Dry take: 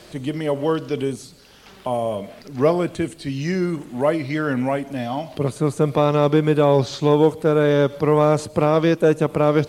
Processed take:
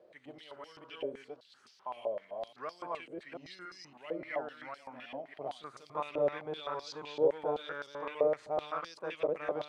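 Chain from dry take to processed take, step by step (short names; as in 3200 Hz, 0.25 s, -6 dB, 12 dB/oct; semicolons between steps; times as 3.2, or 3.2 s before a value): reverse delay 0.281 s, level -1 dB; stepped band-pass 7.8 Hz 530–5000 Hz; gain -8 dB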